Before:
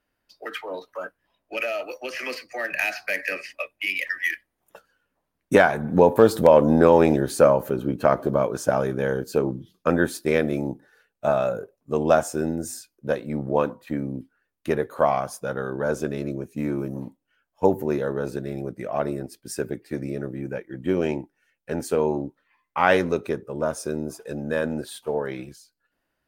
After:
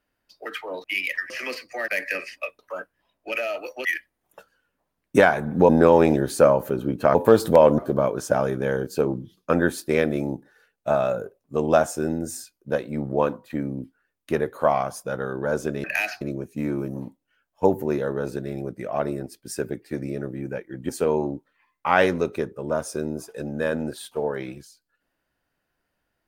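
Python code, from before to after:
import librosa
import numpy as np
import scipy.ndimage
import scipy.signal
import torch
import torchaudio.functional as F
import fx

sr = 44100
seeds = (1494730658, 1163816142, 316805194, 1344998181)

y = fx.edit(x, sr, fx.swap(start_s=0.84, length_s=1.26, other_s=3.76, other_length_s=0.46),
    fx.move(start_s=2.68, length_s=0.37, to_s=16.21),
    fx.move(start_s=6.06, length_s=0.63, to_s=8.15),
    fx.cut(start_s=20.89, length_s=0.91), tone=tone)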